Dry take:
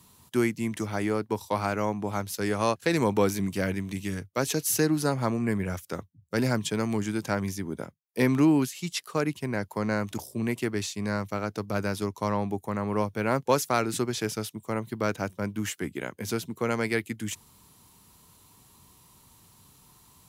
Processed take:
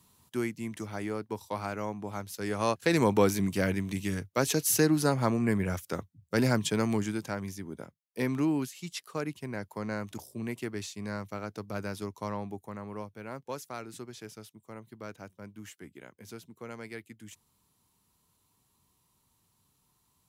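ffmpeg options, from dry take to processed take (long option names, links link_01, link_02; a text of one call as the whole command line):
ffmpeg -i in.wav -af "afade=type=in:start_time=2.37:duration=0.59:silence=0.446684,afade=type=out:start_time=6.9:duration=0.42:silence=0.446684,afade=type=out:start_time=12.19:duration=1:silence=0.398107" out.wav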